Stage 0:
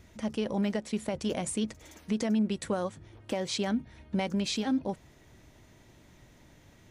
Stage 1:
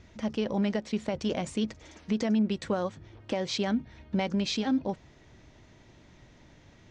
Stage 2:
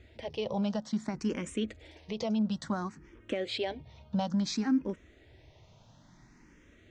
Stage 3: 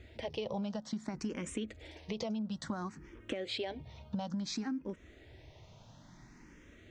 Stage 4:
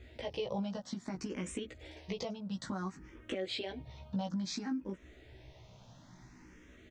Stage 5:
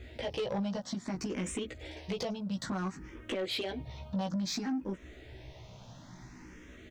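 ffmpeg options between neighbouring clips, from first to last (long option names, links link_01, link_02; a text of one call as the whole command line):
ffmpeg -i in.wav -af "lowpass=frequency=6200:width=0.5412,lowpass=frequency=6200:width=1.3066,volume=1.5dB" out.wav
ffmpeg -i in.wav -filter_complex "[0:a]asplit=2[link_01][link_02];[link_02]afreqshift=0.58[link_03];[link_01][link_03]amix=inputs=2:normalize=1" out.wav
ffmpeg -i in.wav -af "acompressor=threshold=-36dB:ratio=10,volume=2dB" out.wav
ffmpeg -i in.wav -filter_complex "[0:a]asplit=2[link_01][link_02];[link_02]adelay=16,volume=-2.5dB[link_03];[link_01][link_03]amix=inputs=2:normalize=0,volume=-2dB" out.wav
ffmpeg -i in.wav -af "asoftclip=type=tanh:threshold=-34dB,volume=6dB" out.wav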